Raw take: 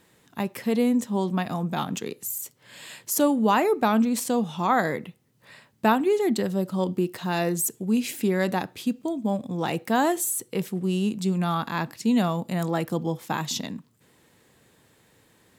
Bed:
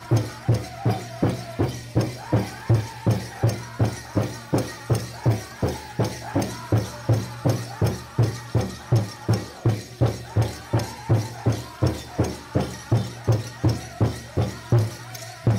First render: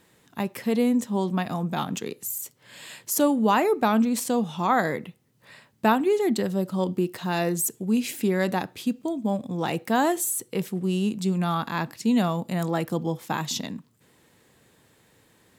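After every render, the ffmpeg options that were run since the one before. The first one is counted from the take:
-af anull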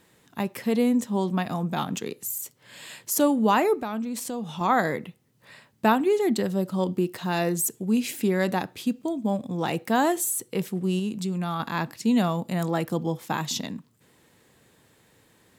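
-filter_complex "[0:a]asettb=1/sr,asplit=3[s0][s1][s2];[s0]atrim=end=3.754[s3];[s1]atrim=start=3.75:end=4.61,asetpts=PTS-STARTPTS,afade=t=in:d=0.004:c=qsin,afade=t=out:st=0.856:d=0.004:c=qsin,acompressor=threshold=0.0316:ratio=3:attack=3.2:release=140:knee=1:detection=peak[s4];[s2]atrim=start=4.606[s5];[s3][s4]acrossfade=d=0.004:c1=hsin:c2=qsin[s6];[s6][s5]acrossfade=d=0.004:c1=qsin:c2=hsin,asettb=1/sr,asplit=3[s7][s8][s9];[s7]atrim=end=10.994[s10];[s8]atrim=start=10.99:end=11.6,asetpts=PTS-STARTPTS,afade=t=in:d=0.004:c=qsin,afade=t=out:st=0.606:d=0.004:c=qsin,acompressor=threshold=0.0447:ratio=2:attack=3.2:release=140:knee=1:detection=peak[s11];[s9]atrim=start=11.596[s12];[s10][s11]acrossfade=d=0.004:c1=hsin:c2=qsin[s13];[s13][s12]acrossfade=d=0.004:c1=qsin:c2=hsin"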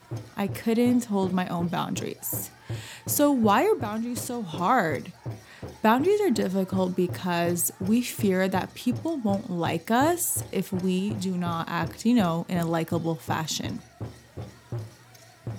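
-filter_complex "[1:a]volume=0.178[s0];[0:a][s0]amix=inputs=2:normalize=0"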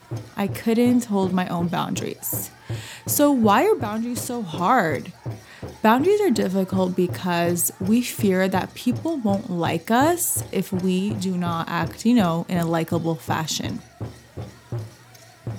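-af "volume=1.58"

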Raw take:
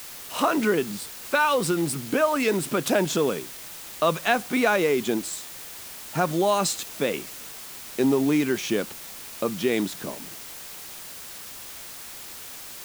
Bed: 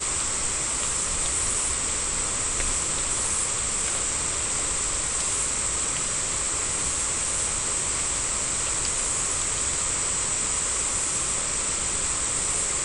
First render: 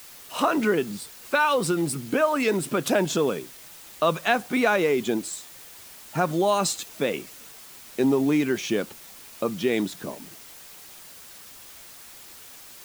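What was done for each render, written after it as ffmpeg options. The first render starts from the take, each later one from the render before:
-af "afftdn=nr=6:nf=-40"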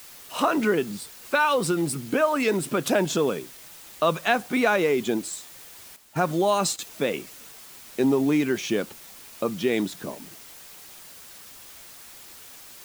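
-filter_complex "[0:a]asettb=1/sr,asplit=3[s0][s1][s2];[s0]atrim=end=5.964[s3];[s1]atrim=start=5.96:end=6.79,asetpts=PTS-STARTPTS,afade=t=in:d=0.004:c=qsin,afade=t=out:st=0.826:d=0.004:c=qsin,agate=range=0.316:threshold=0.0178:ratio=16:release=100:detection=peak[s4];[s2]atrim=start=6.786[s5];[s3][s4]acrossfade=d=0.004:c1=hsin:c2=qsin[s6];[s6][s5]acrossfade=d=0.004:c1=qsin:c2=hsin"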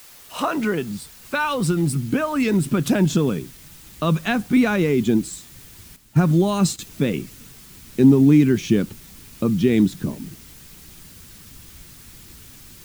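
-af "asubboost=boost=10:cutoff=200"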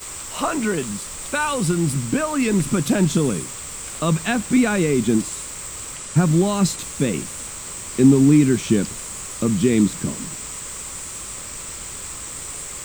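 -filter_complex "[1:a]volume=0.447[s0];[0:a][s0]amix=inputs=2:normalize=0"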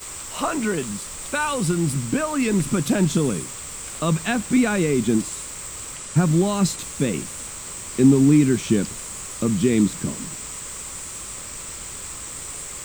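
-af "volume=0.841"

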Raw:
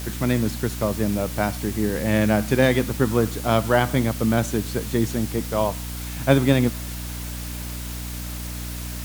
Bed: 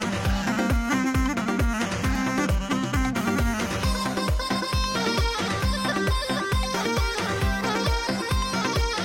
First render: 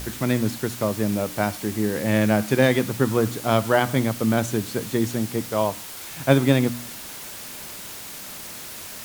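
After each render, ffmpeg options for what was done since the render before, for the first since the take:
-af "bandreject=f=60:t=h:w=4,bandreject=f=120:t=h:w=4,bandreject=f=180:t=h:w=4,bandreject=f=240:t=h:w=4,bandreject=f=300:t=h:w=4"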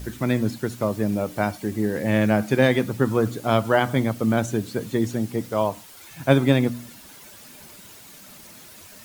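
-af "afftdn=nr=10:nf=-37"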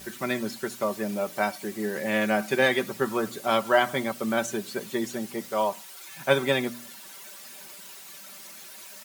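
-af "highpass=f=700:p=1,aecho=1:1:5.2:0.59"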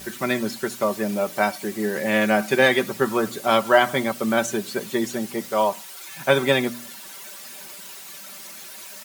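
-af "volume=1.78,alimiter=limit=0.708:level=0:latency=1"

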